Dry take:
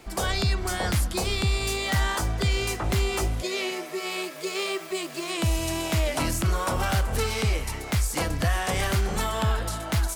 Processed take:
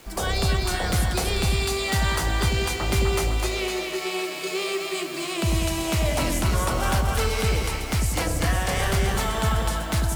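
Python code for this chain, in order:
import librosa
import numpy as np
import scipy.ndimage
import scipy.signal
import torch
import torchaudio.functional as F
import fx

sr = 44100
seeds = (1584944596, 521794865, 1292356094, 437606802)

y = fx.echo_split(x, sr, split_hz=710.0, low_ms=94, high_ms=253, feedback_pct=52, wet_db=-3)
y = fx.quant_dither(y, sr, seeds[0], bits=8, dither='none')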